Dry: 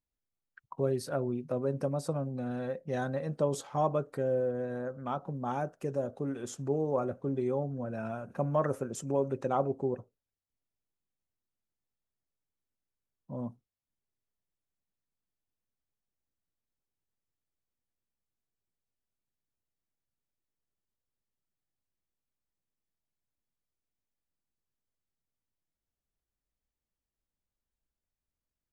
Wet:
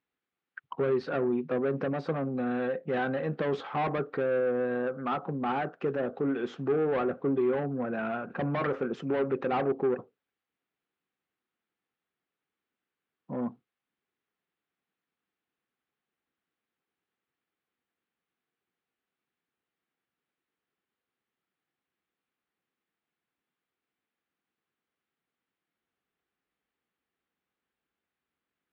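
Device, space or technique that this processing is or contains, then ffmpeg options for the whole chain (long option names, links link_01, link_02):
overdrive pedal into a guitar cabinet: -filter_complex "[0:a]asplit=2[link_01][link_02];[link_02]highpass=frequency=720:poles=1,volume=23dB,asoftclip=type=tanh:threshold=-15.5dB[link_03];[link_01][link_03]amix=inputs=2:normalize=0,lowpass=frequency=1300:poles=1,volume=-6dB,highpass=90,equalizer=frequency=110:width_type=q:width=4:gain=-8,equalizer=frequency=600:width_type=q:width=4:gain=-10,equalizer=frequency=940:width_type=q:width=4:gain=-6,lowpass=frequency=3700:width=0.5412,lowpass=frequency=3700:width=1.3066"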